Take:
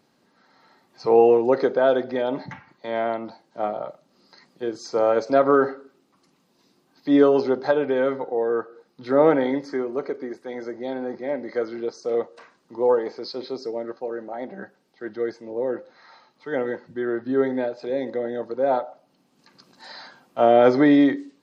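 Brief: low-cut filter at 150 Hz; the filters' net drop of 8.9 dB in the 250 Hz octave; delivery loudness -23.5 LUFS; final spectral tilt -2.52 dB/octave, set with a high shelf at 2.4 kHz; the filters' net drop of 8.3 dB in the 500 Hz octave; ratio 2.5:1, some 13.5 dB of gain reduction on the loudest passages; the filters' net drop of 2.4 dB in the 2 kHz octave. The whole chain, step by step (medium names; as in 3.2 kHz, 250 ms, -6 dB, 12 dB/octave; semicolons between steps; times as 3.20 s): high-pass 150 Hz; peaking EQ 250 Hz -7.5 dB; peaking EQ 500 Hz -8 dB; peaking EQ 2 kHz -4 dB; treble shelf 2.4 kHz +3.5 dB; compression 2.5:1, threshold -39 dBFS; trim +17 dB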